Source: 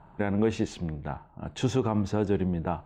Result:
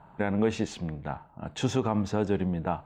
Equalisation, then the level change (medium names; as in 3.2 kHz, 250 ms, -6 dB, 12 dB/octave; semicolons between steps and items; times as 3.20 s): bass shelf 85 Hz -9.5 dB; peaking EQ 350 Hz -5 dB 0.36 oct; +1.5 dB